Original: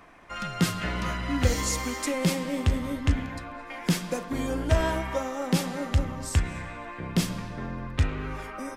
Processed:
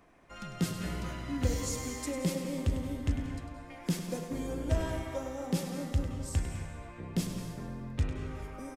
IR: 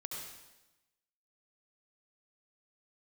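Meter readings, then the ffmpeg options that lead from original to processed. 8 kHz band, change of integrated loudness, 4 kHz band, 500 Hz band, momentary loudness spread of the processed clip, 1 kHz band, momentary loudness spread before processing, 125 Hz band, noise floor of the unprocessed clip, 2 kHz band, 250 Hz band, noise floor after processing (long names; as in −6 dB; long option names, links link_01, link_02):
−7.0 dB, −6.5 dB, −9.5 dB, −6.5 dB, 9 LU, −11.0 dB, 11 LU, −5.5 dB, −41 dBFS, −11.5 dB, −5.5 dB, −48 dBFS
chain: -filter_complex "[0:a]firequalizer=gain_entry='entry(430,0);entry(1100,-7);entry(7200,-1)':delay=0.05:min_phase=1,asplit=2[link_01][link_02];[1:a]atrim=start_sample=2205,adelay=100[link_03];[link_02][link_03]afir=irnorm=-1:irlink=0,volume=-5dB[link_04];[link_01][link_04]amix=inputs=2:normalize=0,volume=-6.5dB"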